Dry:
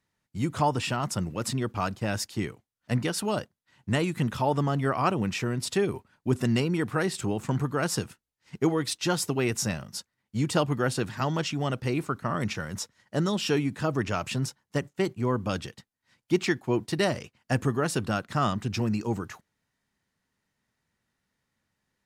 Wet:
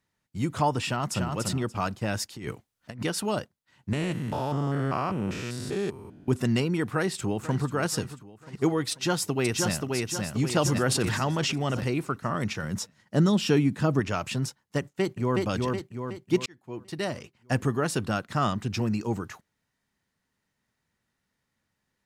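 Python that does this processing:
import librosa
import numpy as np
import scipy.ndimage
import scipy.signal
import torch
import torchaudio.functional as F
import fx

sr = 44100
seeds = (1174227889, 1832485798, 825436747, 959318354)

y = fx.echo_throw(x, sr, start_s=0.85, length_s=0.45, ms=290, feedback_pct=20, wet_db=-4.5)
y = fx.over_compress(y, sr, threshold_db=-37.0, ratio=-1.0, at=(2.36, 3.03))
y = fx.spec_steps(y, sr, hold_ms=200, at=(3.93, 6.28))
y = fx.echo_throw(y, sr, start_s=6.9, length_s=0.83, ms=490, feedback_pct=50, wet_db=-14.0)
y = fx.echo_throw(y, sr, start_s=8.91, length_s=1.05, ms=530, feedback_pct=45, wet_db=-3.0)
y = fx.sustainer(y, sr, db_per_s=25.0, at=(10.64, 11.85), fade=0.02)
y = fx.peak_eq(y, sr, hz=190.0, db=6.5, octaves=1.7, at=(12.63, 14.0))
y = fx.echo_throw(y, sr, start_s=14.8, length_s=0.63, ms=370, feedback_pct=50, wet_db=-2.0)
y = fx.edit(y, sr, fx.fade_in_span(start_s=16.46, length_s=1.08), tone=tone)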